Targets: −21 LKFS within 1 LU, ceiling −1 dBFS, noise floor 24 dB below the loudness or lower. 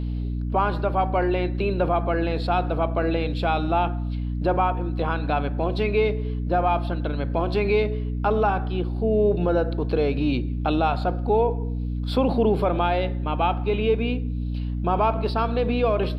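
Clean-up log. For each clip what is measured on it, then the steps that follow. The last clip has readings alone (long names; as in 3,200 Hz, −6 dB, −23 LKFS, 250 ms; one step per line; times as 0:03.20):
mains hum 60 Hz; hum harmonics up to 300 Hz; level of the hum −24 dBFS; integrated loudness −24.0 LKFS; sample peak −9.5 dBFS; target loudness −21.0 LKFS
→ mains-hum notches 60/120/180/240/300 Hz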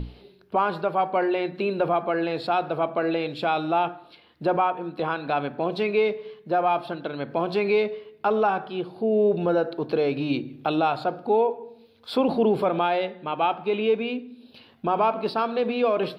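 mains hum none found; integrated loudness −25.0 LKFS; sample peak −11.5 dBFS; target loudness −21.0 LKFS
→ level +4 dB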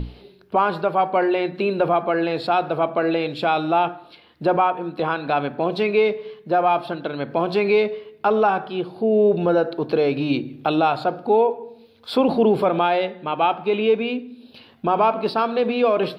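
integrated loudness −21.0 LKFS; sample peak −7.5 dBFS; background noise floor −51 dBFS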